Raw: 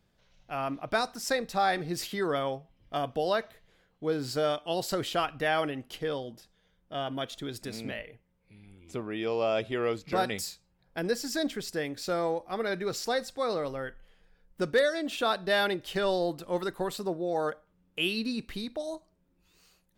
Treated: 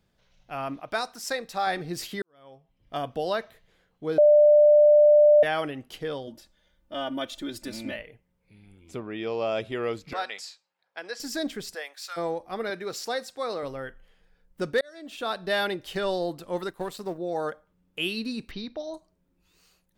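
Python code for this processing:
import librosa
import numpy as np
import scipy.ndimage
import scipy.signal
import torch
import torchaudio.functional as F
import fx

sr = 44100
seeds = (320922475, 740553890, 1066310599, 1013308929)

y = fx.low_shelf(x, sr, hz=280.0, db=-9.5, at=(0.8, 1.67))
y = fx.comb(y, sr, ms=3.4, depth=0.84, at=(6.27, 7.96))
y = fx.lowpass(y, sr, hz=fx.line((8.99, 4600.0), (9.5, 8200.0)), slope=12, at=(8.99, 9.5), fade=0.02)
y = fx.bandpass_edges(y, sr, low_hz=770.0, high_hz=5500.0, at=(10.13, 11.2))
y = fx.highpass(y, sr, hz=fx.line((11.73, 490.0), (12.16, 1200.0)), slope=24, at=(11.73, 12.16), fade=0.02)
y = fx.highpass(y, sr, hz=300.0, slope=6, at=(12.7, 13.63))
y = fx.law_mismatch(y, sr, coded='A', at=(16.68, 17.18))
y = fx.brickwall_lowpass(y, sr, high_hz=6200.0, at=(18.51, 18.94))
y = fx.edit(y, sr, fx.fade_in_span(start_s=2.22, length_s=0.73, curve='qua'),
    fx.bleep(start_s=4.18, length_s=1.25, hz=595.0, db=-12.5),
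    fx.fade_in_span(start_s=14.81, length_s=0.65), tone=tone)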